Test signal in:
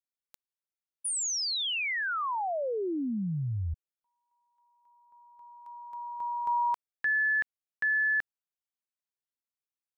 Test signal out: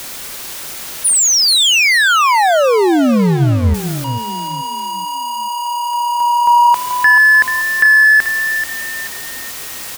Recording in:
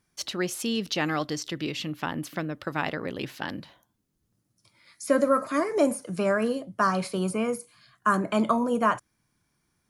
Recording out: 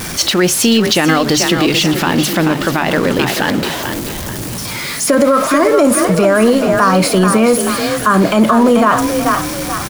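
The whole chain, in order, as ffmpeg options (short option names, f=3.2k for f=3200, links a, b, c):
-filter_complex "[0:a]aeval=exprs='val(0)+0.5*0.0188*sgn(val(0))':c=same,bandreject=f=50:t=h:w=6,bandreject=f=100:t=h:w=6,bandreject=f=150:t=h:w=6,asplit=2[a][b];[b]asplit=4[c][d][e][f];[c]adelay=434,afreqshift=34,volume=-9dB[g];[d]adelay=868,afreqshift=68,volume=-17.2dB[h];[e]adelay=1302,afreqshift=102,volume=-25.4dB[i];[f]adelay=1736,afreqshift=136,volume=-33.5dB[j];[g][h][i][j]amix=inputs=4:normalize=0[k];[a][k]amix=inputs=2:normalize=0,alimiter=level_in=18.5dB:limit=-1dB:release=50:level=0:latency=1,volume=-1.5dB"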